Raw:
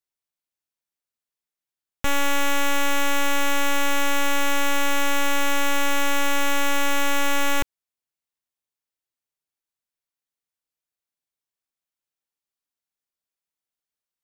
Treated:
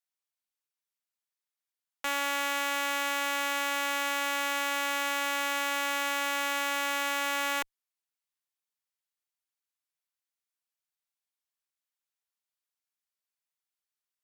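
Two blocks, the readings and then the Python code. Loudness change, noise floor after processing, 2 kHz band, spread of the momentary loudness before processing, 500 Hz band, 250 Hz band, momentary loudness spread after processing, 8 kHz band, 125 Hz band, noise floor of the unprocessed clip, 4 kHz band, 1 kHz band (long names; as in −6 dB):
−6.0 dB, below −85 dBFS, −5.0 dB, 1 LU, −8.5 dB, −13.0 dB, 1 LU, −7.0 dB, below −35 dB, below −85 dBFS, −5.0 dB, −5.5 dB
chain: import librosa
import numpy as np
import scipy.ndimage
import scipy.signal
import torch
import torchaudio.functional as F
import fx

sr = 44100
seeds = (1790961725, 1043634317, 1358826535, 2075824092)

y = scipy.signal.sosfilt(scipy.signal.butter(2, 810.0, 'highpass', fs=sr, output='sos'), x)
y = fx.rider(y, sr, range_db=4, speed_s=0.5)
y = fx.tube_stage(y, sr, drive_db=18.0, bias=0.4)
y = y * librosa.db_to_amplitude(-1.0)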